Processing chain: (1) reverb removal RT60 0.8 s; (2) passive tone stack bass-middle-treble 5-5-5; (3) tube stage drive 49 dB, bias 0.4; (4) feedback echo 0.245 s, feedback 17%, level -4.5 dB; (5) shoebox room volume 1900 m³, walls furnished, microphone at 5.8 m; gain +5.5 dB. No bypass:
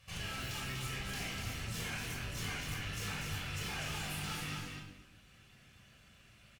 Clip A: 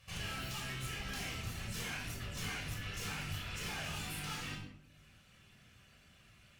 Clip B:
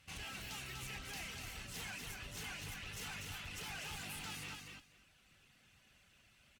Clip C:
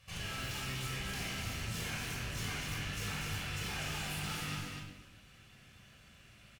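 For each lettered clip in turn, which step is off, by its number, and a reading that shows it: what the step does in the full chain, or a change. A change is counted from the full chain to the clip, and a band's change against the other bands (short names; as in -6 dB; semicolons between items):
4, loudness change -1.0 LU; 5, echo-to-direct 4.0 dB to -4.5 dB; 1, momentary loudness spread change +17 LU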